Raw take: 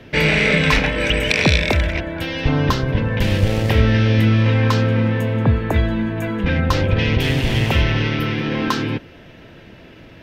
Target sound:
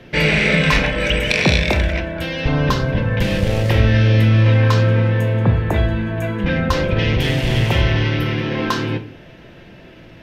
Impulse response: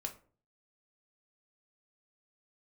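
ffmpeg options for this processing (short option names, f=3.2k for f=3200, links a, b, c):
-filter_complex "[0:a]asplit=2[a][b];[1:a]atrim=start_sample=2205,asetrate=26460,aresample=44100[c];[b][c]afir=irnorm=-1:irlink=0,volume=3dB[d];[a][d]amix=inputs=2:normalize=0,volume=-8dB"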